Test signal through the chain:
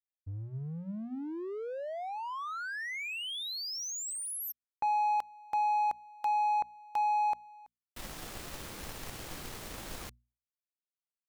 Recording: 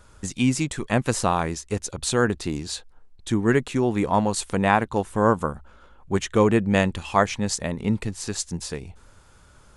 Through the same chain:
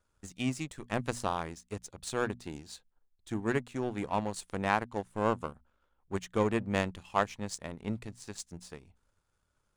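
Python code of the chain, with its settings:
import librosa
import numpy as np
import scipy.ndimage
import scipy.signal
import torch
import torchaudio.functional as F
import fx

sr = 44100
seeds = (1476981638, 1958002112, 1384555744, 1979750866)

y = fx.power_curve(x, sr, exponent=1.4)
y = fx.hum_notches(y, sr, base_hz=60, count=4)
y = y * librosa.db_to_amplitude(-6.5)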